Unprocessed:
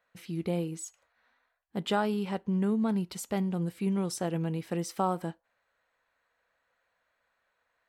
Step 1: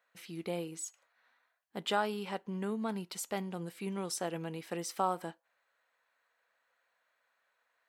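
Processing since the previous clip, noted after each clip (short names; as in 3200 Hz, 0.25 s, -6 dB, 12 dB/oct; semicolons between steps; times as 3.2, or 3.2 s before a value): HPF 590 Hz 6 dB/oct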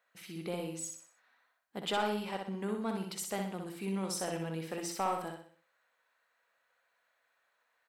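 soft clip -23.5 dBFS, distortion -17 dB; de-hum 171.7 Hz, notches 38; on a send: feedback echo 62 ms, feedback 42%, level -4.5 dB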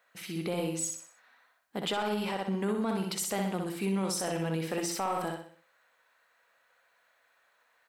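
limiter -30.5 dBFS, peak gain reduction 9.5 dB; gain +7.5 dB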